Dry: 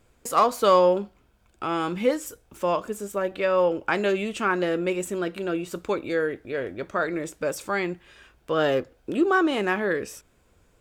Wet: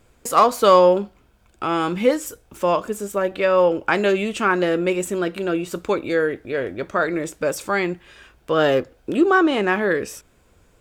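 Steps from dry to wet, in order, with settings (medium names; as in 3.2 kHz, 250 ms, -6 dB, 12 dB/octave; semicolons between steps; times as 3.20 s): 9.30–9.72 s: treble shelf 9.5 kHz -> 6.1 kHz -8.5 dB; trim +5 dB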